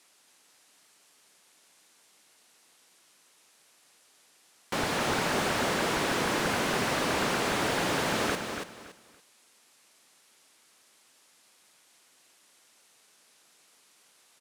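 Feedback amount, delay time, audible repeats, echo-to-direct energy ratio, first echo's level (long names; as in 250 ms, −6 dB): 25%, 283 ms, 3, −6.0 dB, −6.5 dB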